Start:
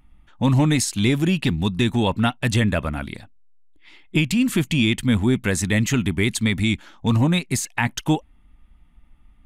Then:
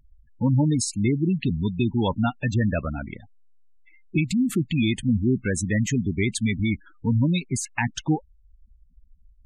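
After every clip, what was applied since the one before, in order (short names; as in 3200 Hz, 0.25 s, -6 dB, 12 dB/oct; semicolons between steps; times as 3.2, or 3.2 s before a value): spectral gate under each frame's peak -15 dB strong; gain -2.5 dB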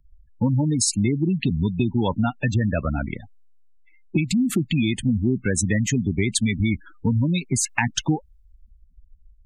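compressor, threshold -26 dBFS, peak gain reduction 9.5 dB; three-band expander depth 40%; gain +8 dB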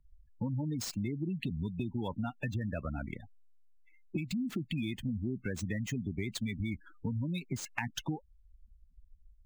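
median filter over 5 samples; compressor 2:1, threshold -29 dBFS, peak gain reduction 7.5 dB; gain -7.5 dB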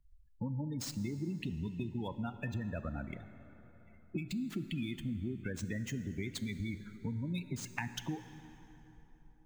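plate-style reverb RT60 3.9 s, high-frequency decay 0.6×, DRR 10.5 dB; gain -3 dB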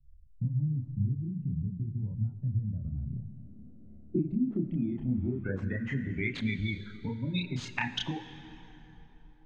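low-pass sweep 130 Hz -> 3600 Hz, 3.06–6.76; chorus voices 2, 0.47 Hz, delay 30 ms, depth 2.8 ms; gain +8 dB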